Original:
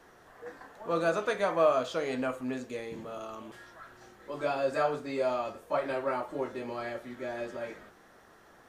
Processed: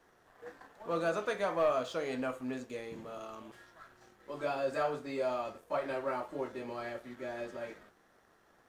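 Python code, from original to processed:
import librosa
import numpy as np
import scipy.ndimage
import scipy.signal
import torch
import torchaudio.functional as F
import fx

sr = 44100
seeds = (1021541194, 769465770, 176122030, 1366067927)

y = fx.leveller(x, sr, passes=1)
y = F.gain(torch.from_numpy(y), -7.5).numpy()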